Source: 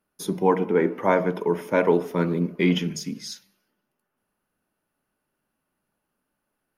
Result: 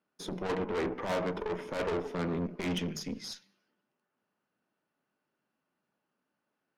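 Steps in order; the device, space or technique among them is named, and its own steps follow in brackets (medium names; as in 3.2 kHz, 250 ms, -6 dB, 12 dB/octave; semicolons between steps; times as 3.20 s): valve radio (band-pass 140–5600 Hz; valve stage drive 28 dB, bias 0.65; transformer saturation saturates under 140 Hz)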